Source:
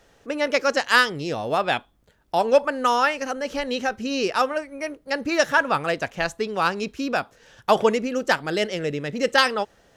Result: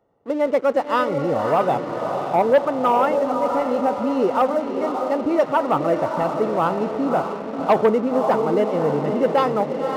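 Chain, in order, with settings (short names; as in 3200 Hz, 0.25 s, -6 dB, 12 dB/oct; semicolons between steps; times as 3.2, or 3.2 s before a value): polynomial smoothing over 65 samples; on a send: diffused feedback echo 0.567 s, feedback 55%, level -6.5 dB; on the sum: sample leveller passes 2; HPF 100 Hz 12 dB/oct; gain -2.5 dB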